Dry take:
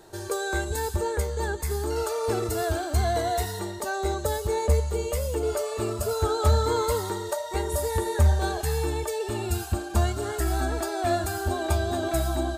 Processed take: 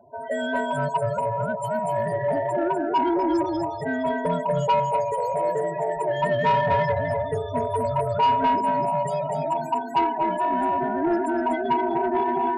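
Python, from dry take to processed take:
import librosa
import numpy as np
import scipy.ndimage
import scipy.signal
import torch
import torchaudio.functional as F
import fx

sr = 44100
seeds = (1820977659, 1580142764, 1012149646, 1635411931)

p1 = fx.band_invert(x, sr, width_hz=1000)
p2 = fx.dynamic_eq(p1, sr, hz=210.0, q=0.81, threshold_db=-40.0, ratio=4.0, max_db=4)
p3 = fx.quant_dither(p2, sr, seeds[0], bits=6, dither='none')
p4 = p2 + (p3 * 10.0 ** (-11.5 / 20.0))
p5 = fx.spec_topn(p4, sr, count=16)
p6 = p5 + fx.echo_single(p5, sr, ms=245, db=-4.5, dry=0)
y = 10.0 ** (-14.5 / 20.0) * np.tanh(p6 / 10.0 ** (-14.5 / 20.0))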